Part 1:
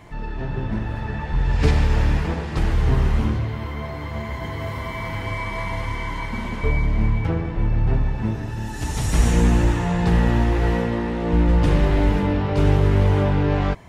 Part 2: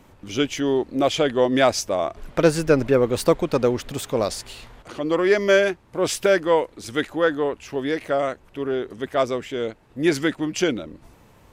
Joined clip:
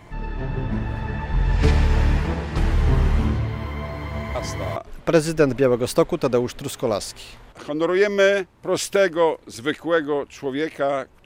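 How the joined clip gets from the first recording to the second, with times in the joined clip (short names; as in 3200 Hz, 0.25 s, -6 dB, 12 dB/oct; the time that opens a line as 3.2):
part 1
4.35 add part 2 from 1.65 s 0.41 s -9.5 dB
4.76 switch to part 2 from 2.06 s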